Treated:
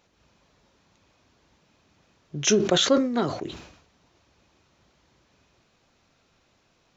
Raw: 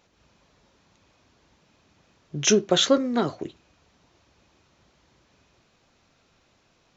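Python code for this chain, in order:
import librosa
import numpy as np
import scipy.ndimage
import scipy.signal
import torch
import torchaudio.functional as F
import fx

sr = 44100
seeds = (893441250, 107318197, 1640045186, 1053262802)

y = fx.sustainer(x, sr, db_per_s=74.0)
y = y * 10.0 ** (-1.5 / 20.0)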